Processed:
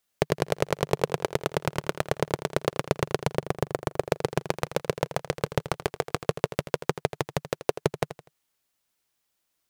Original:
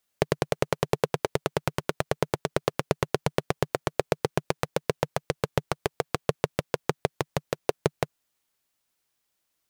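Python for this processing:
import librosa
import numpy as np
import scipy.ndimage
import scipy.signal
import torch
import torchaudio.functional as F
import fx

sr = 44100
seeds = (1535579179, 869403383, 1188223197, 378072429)

y = fx.peak_eq(x, sr, hz=3700.0, db=-5.5, octaves=2.7, at=(3.38, 4.01))
y = fx.echo_feedback(y, sr, ms=82, feedback_pct=35, wet_db=-13)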